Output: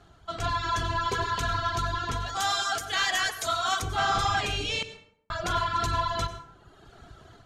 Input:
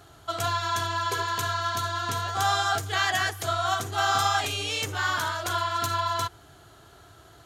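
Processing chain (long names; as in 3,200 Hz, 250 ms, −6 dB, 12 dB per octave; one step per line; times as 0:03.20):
sub-octave generator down 1 octave, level +1 dB
reverb reduction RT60 1.2 s
0:02.26–0:03.82: RIAA equalisation recording
automatic gain control gain up to 8 dB
soft clipping −13.5 dBFS, distortion −16 dB
high-frequency loss of the air 73 metres
0:04.83–0:05.30: silence
dense smooth reverb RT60 0.66 s, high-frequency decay 0.6×, pre-delay 80 ms, DRR 11 dB
level −4.5 dB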